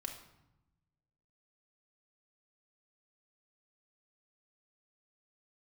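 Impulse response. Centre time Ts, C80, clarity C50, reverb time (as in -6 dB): 22 ms, 10.5 dB, 7.5 dB, 0.90 s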